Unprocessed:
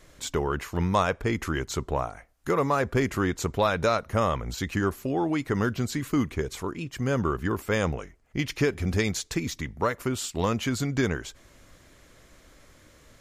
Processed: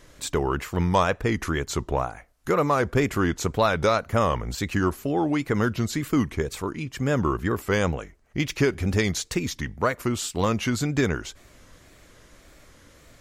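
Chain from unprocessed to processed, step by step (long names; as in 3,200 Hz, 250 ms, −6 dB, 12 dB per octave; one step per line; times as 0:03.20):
tape wow and flutter 110 cents
level +2.5 dB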